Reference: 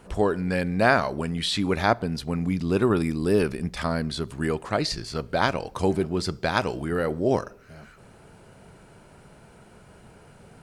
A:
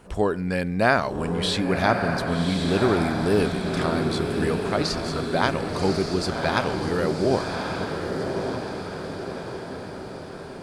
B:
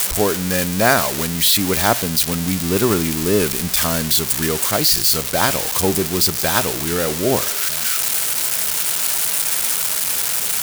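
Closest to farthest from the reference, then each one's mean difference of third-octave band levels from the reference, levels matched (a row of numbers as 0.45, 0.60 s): A, B; 8.5, 13.5 dB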